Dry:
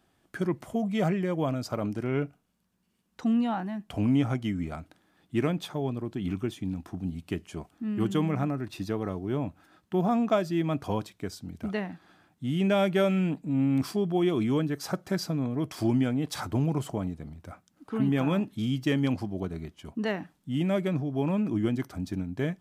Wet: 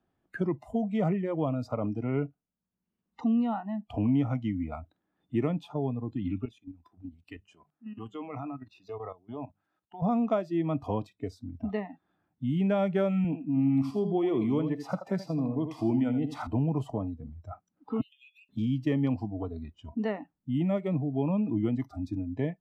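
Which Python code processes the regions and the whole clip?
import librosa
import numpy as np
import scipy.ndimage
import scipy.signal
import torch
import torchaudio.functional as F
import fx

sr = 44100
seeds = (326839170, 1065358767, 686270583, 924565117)

y = fx.chain(x, sr, fx.low_shelf(hz=440.0, db=-10.5),
    fx.hum_notches(base_hz=50, count=4),
    fx.level_steps(step_db=13), at=(6.45, 10.02))
y = fx.chain(y, sr, fx.highpass(hz=130.0, slope=12),
    fx.echo_feedback(ms=81, feedback_pct=21, wet_db=-8.5), at=(13.24, 16.47))
y = fx.chain(y, sr, fx.steep_highpass(hz=2800.0, slope=36),
    fx.over_compress(threshold_db=-52.0, ratio=-0.5), at=(18.01, 18.49))
y = fx.lowpass(y, sr, hz=1100.0, slope=6)
y = fx.noise_reduce_blind(y, sr, reduce_db=19)
y = fx.band_squash(y, sr, depth_pct=40)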